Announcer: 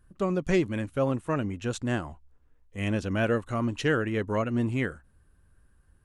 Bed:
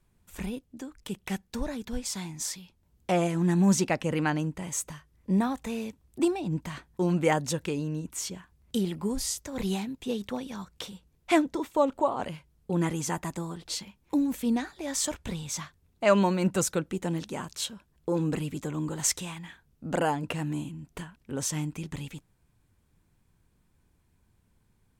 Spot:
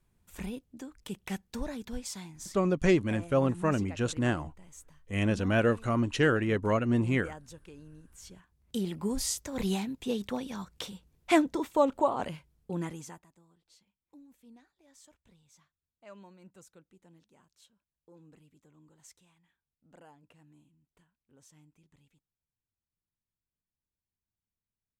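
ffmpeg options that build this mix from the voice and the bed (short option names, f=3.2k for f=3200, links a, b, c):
-filter_complex "[0:a]adelay=2350,volume=0.5dB[a];[1:a]volume=15.5dB,afade=t=out:st=1.85:d=0.88:silence=0.158489,afade=t=in:st=8.16:d=1.07:silence=0.112202,afade=t=out:st=12.16:d=1.1:silence=0.0375837[b];[a][b]amix=inputs=2:normalize=0"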